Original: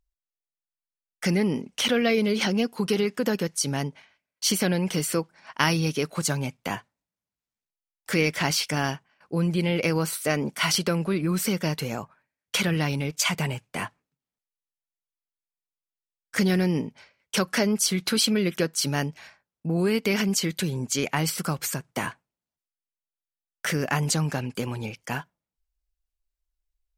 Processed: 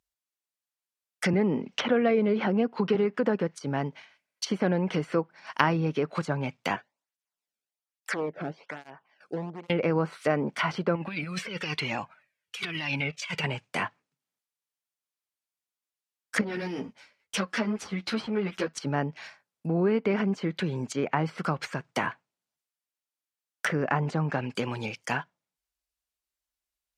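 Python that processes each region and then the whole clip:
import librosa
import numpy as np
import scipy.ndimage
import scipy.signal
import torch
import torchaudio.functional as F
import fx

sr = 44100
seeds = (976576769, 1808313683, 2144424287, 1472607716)

y = fx.chain(x, sr, fx.lowpass(hz=5200.0, slope=12),
    fx.band_squash(depth_pct=40), at=(1.33, 2.95))
y = fx.chain(y, sr, fx.env_lowpass_down(base_hz=580.0, full_db=-21.5),
    fx.overload_stage(gain_db=21.0),
    fx.flanger_cancel(hz=1.2, depth_ms=1.1), at=(6.76, 9.7))
y = fx.chain(y, sr, fx.peak_eq(hz=2600.0, db=8.5, octaves=1.0),
    fx.over_compress(threshold_db=-26.0, ratio=-0.5),
    fx.comb_cascade(direction='falling', hz=1.1), at=(10.95, 13.44))
y = fx.chain(y, sr, fx.halfwave_gain(db=-7.0),
    fx.ensemble(), at=(16.41, 18.78))
y = scipy.signal.sosfilt(scipy.signal.butter(2, 94.0, 'highpass', fs=sr, output='sos'), y)
y = fx.low_shelf(y, sr, hz=420.0, db=-6.5)
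y = fx.env_lowpass_down(y, sr, base_hz=1200.0, full_db=-25.0)
y = y * 10.0 ** (3.5 / 20.0)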